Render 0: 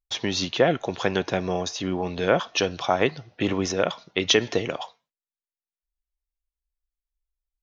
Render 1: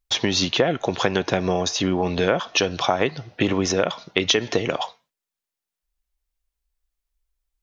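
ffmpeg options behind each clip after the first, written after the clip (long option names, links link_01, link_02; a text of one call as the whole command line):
ffmpeg -i in.wav -af "acompressor=threshold=-25dB:ratio=4,volume=8dB" out.wav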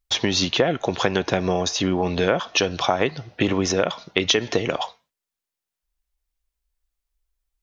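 ffmpeg -i in.wav -af "equalizer=frequency=69:width=7.2:gain=9.5" out.wav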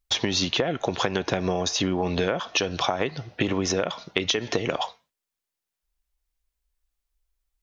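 ffmpeg -i in.wav -af "acompressor=threshold=-20dB:ratio=6" out.wav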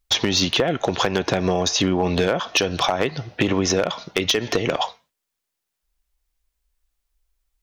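ffmpeg -i in.wav -af "asoftclip=type=hard:threshold=-15.5dB,volume=5dB" out.wav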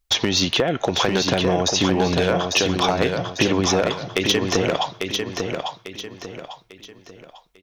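ffmpeg -i in.wav -af "aecho=1:1:847|1694|2541|3388:0.562|0.202|0.0729|0.0262" out.wav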